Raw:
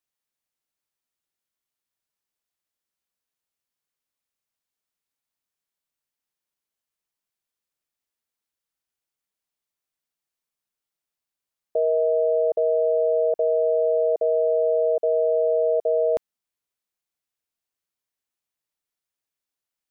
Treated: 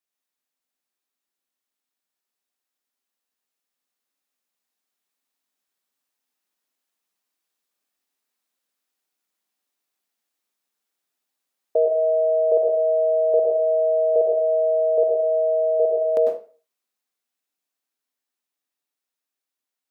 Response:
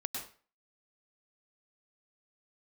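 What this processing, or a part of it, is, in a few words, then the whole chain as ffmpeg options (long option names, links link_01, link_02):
far laptop microphone: -filter_complex "[1:a]atrim=start_sample=2205[link_01];[0:a][link_01]afir=irnorm=-1:irlink=0,highpass=frequency=190:width=0.5412,highpass=frequency=190:width=1.3066,dynaudnorm=framelen=660:gausssize=13:maxgain=5dB"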